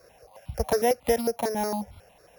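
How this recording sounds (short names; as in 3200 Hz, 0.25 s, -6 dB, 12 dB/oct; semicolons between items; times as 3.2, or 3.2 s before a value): a buzz of ramps at a fixed pitch in blocks of 8 samples; notches that jump at a steady rate 11 Hz 850–1700 Hz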